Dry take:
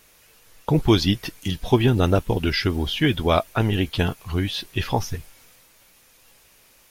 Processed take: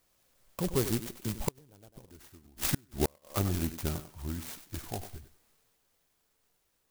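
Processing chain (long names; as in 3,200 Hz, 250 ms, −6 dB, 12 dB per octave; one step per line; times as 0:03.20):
source passing by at 0:02.17, 49 m/s, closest 9.9 metres
feedback echo with a high-pass in the loop 96 ms, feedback 22%, high-pass 180 Hz, level −10.5 dB
gate with flip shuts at −21 dBFS, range −37 dB
converter with an unsteady clock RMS 0.13 ms
level +6 dB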